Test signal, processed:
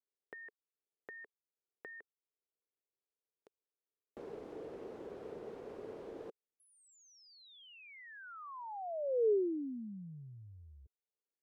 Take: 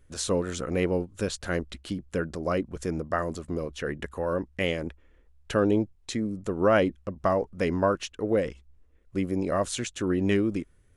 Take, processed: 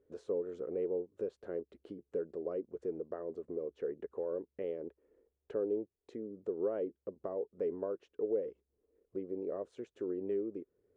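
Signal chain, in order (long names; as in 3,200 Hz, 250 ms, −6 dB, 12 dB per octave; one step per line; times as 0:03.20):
downward compressor 2 to 1, threshold −41 dBFS
resonant band-pass 430 Hz, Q 4.4
level +6 dB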